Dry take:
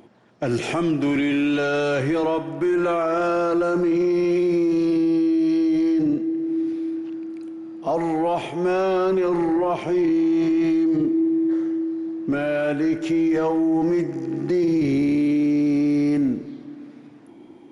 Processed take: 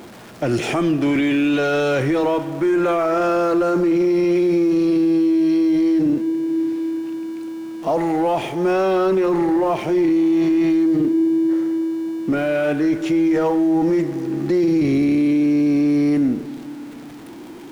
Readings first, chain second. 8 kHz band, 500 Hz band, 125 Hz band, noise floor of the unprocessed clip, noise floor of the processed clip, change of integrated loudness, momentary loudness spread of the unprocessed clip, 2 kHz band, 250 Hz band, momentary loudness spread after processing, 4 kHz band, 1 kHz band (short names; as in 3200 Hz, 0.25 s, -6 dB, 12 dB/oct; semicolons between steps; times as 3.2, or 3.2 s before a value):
n/a, +3.0 dB, +3.0 dB, -45 dBFS, -37 dBFS, +3.0 dB, 8 LU, +3.0 dB, +3.0 dB, 10 LU, +3.5 dB, +3.0 dB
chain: zero-crossing step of -38.5 dBFS; gain +2.5 dB